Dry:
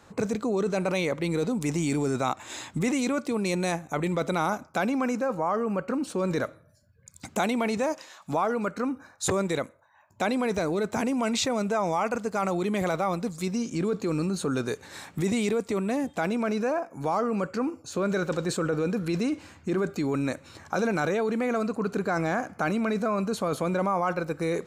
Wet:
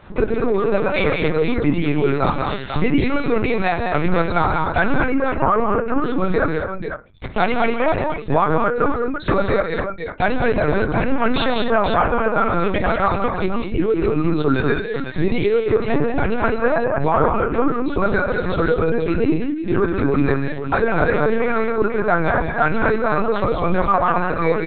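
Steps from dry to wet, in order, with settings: reverb removal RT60 0.98 s; high-pass 57 Hz 24 dB/octave; reverb removal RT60 1.8 s; bass shelf 72 Hz +11 dB; comb 6.6 ms, depth 31%; dynamic bell 1.4 kHz, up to +4 dB, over -43 dBFS, Q 1.5; in parallel at -0.5 dB: compression 5:1, threshold -35 dBFS, peak gain reduction 14.5 dB; on the sum: saturation -10.5 dBFS, distortion -28 dB; volume shaper 156 bpm, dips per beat 1, -6 dB, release 127 ms; multi-tap echo 60/92/145/197/255/493 ms -18.5/-15.5/-9/-5/-13.5/-7.5 dB; on a send at -6 dB: reverberation RT60 0.25 s, pre-delay 4 ms; on the sum: LPC vocoder at 8 kHz pitch kept; trim +6 dB

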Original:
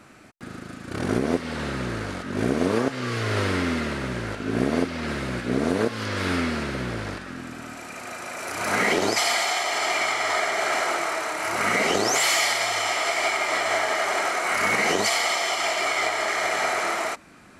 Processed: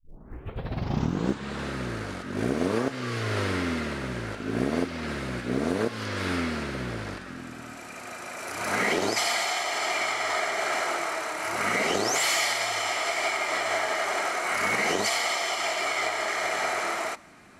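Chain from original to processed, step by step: tape start-up on the opening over 1.70 s; short-mantissa float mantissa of 6-bit; on a send: reverberation RT60 2.7 s, pre-delay 4 ms, DRR 22 dB; on the sum: trim -3.5 dB

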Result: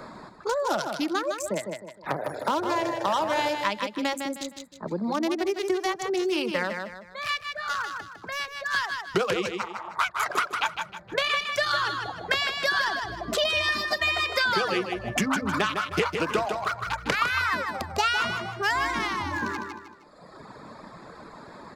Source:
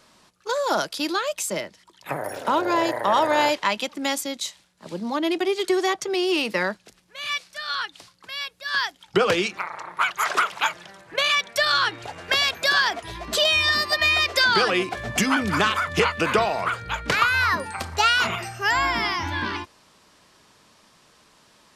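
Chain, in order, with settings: local Wiener filter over 15 samples; reverb removal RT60 1.3 s; on a send: feedback delay 155 ms, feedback 25%, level -7.5 dB; on the sum: three bands compressed up and down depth 70%; trim -2.5 dB

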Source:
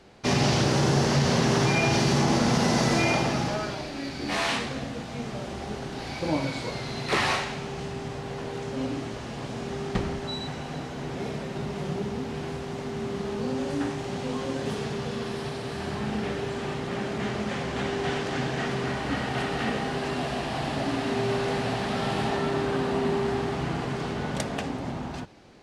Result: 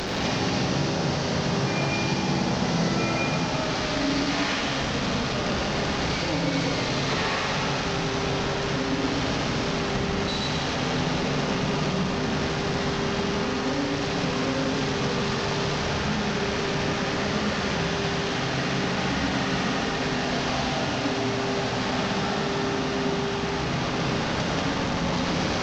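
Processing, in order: one-bit delta coder 32 kbps, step -23 dBFS; compression, threshold -25 dBFS, peak gain reduction 7.5 dB; reverberation RT60 2.5 s, pre-delay 73 ms, DRR -1 dB

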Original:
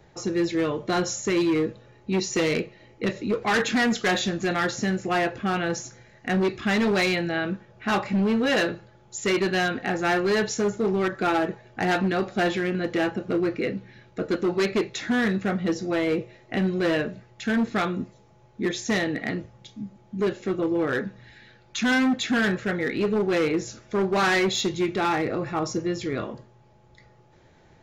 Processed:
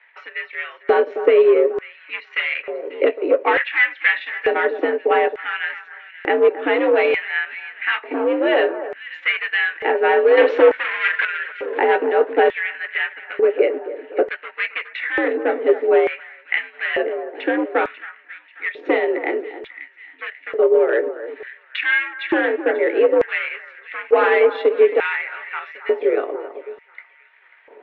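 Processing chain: 10.36–11.71 s: spectral selection erased 580–1200 Hz; 10.37–11.25 s: waveshaping leveller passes 5; in parallel at +2 dB: compression, threshold -32 dBFS, peak gain reduction 13 dB; on the sum: transient shaper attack +4 dB, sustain -9 dB; mistuned SSB +74 Hz 220–2800 Hz; on a send: echo whose repeats swap between lows and highs 270 ms, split 1.6 kHz, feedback 65%, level -11.5 dB; on the sum: LFO high-pass square 0.56 Hz 420–1900 Hz

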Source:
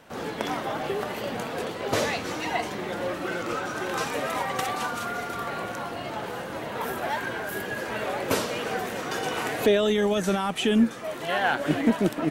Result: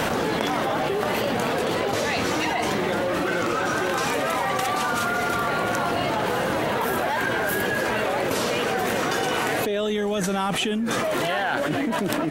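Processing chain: level flattener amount 100%; trim -8 dB

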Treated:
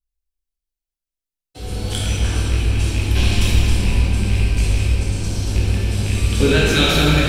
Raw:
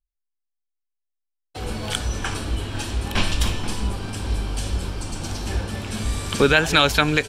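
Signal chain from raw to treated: rattle on loud lows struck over -21 dBFS, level -12 dBFS; peaking EQ 1.1 kHz -10.5 dB 2.2 oct; reverberation RT60 3.5 s, pre-delay 7 ms, DRR -8 dB; trim -2 dB

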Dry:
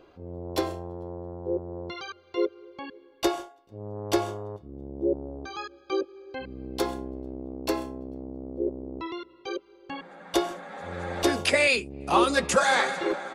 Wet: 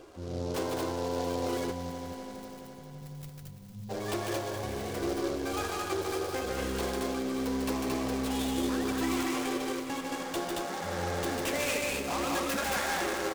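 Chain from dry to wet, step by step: compression 2.5:1, threshold -38 dBFS, peak gain reduction 14.5 dB; overload inside the chain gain 33 dB; flange 0.24 Hz, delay 2.5 ms, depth 9.2 ms, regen -67%; ever faster or slower copies 146 ms, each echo +6 st, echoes 3, each echo -6 dB; loudspeakers at several distances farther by 51 m -4 dB, 77 m -2 dB; spectral selection erased 1.71–3.89 s, 220–9300 Hz; echo with a slow build-up 84 ms, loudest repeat 5, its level -16 dB; delay time shaken by noise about 4.3 kHz, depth 0.044 ms; trim +7.5 dB

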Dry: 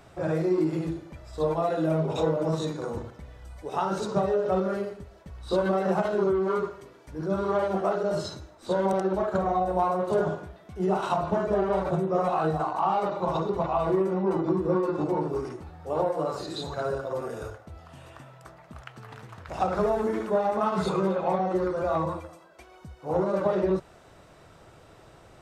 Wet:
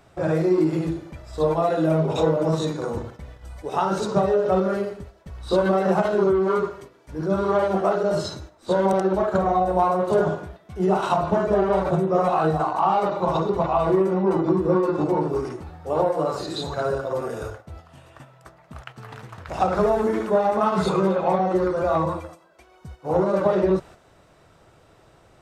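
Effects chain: gate -45 dBFS, range -7 dB; trim +5 dB

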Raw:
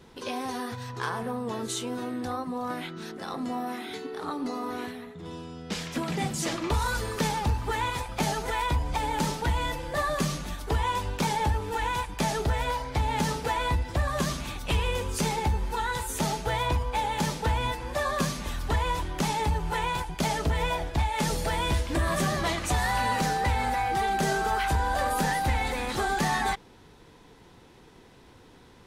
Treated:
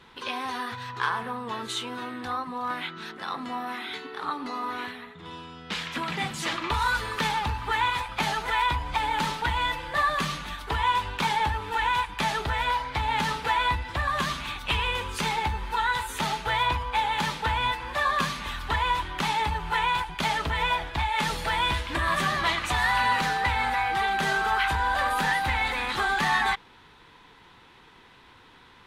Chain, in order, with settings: high-order bell 1.9 kHz +11 dB 2.5 oct; trim -5 dB

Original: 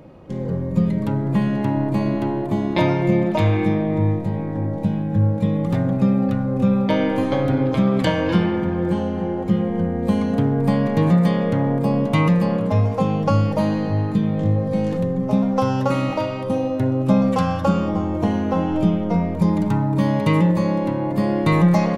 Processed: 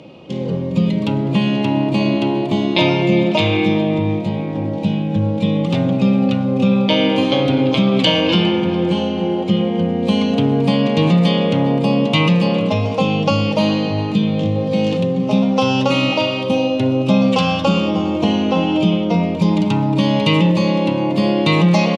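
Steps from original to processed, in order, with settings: resonant high shelf 2.2 kHz +7.5 dB, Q 3; in parallel at +0.5 dB: peak limiter -11.5 dBFS, peak gain reduction 8.5 dB; on the sum: band-pass 150–5200 Hz; delay 408 ms -18.5 dB; trim -1 dB

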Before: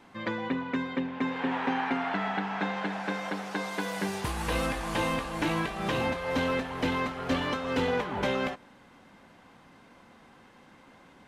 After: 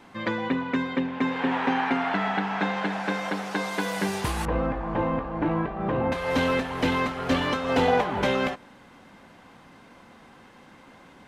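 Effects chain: 4.45–6.12 s: low-pass 1.1 kHz 12 dB/octave; 7.69–8.11 s: peaking EQ 720 Hz +10.5 dB 0.44 oct; trim +4.5 dB

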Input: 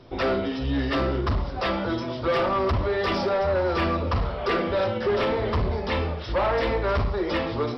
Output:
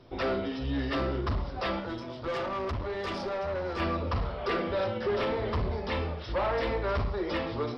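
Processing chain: 1.80–3.80 s: valve stage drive 18 dB, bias 0.7; trim -5.5 dB

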